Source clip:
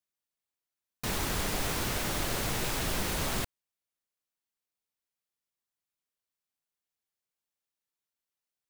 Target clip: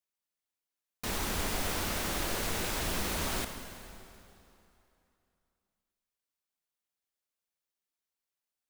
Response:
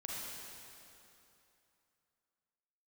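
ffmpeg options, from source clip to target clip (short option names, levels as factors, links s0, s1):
-filter_complex "[0:a]equalizer=f=130:t=o:w=0.25:g=-14,asplit=2[s0][s1];[1:a]atrim=start_sample=2205[s2];[s1][s2]afir=irnorm=-1:irlink=0,volume=0.668[s3];[s0][s3]amix=inputs=2:normalize=0,volume=0.596"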